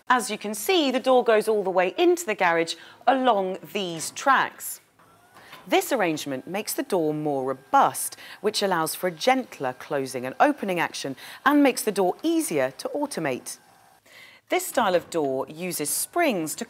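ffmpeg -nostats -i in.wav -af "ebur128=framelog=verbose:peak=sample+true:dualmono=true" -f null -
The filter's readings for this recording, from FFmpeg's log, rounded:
Integrated loudness:
  I:         -21.2 LUFS
  Threshold: -31.6 LUFS
Loudness range:
  LRA:         4.8 LU
  Threshold: -41.9 LUFS
  LRA low:   -24.3 LUFS
  LRA high:  -19.5 LUFS
Sample peak:
  Peak:       -4.5 dBFS
True peak:
  Peak:       -4.5 dBFS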